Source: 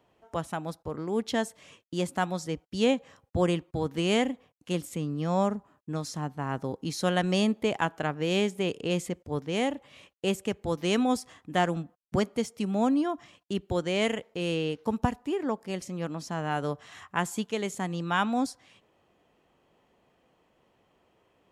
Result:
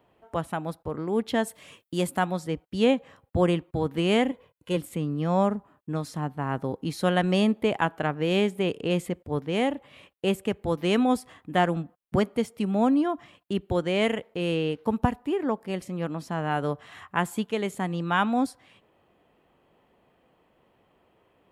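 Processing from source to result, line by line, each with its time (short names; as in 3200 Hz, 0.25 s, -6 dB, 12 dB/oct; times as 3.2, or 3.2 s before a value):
1.46–2.18 high shelf 3700 Hz -> 6200 Hz +10.5 dB
4.31–4.77 comb 2 ms, depth 57%
whole clip: bell 6100 Hz -11 dB 0.94 oct; gain +3 dB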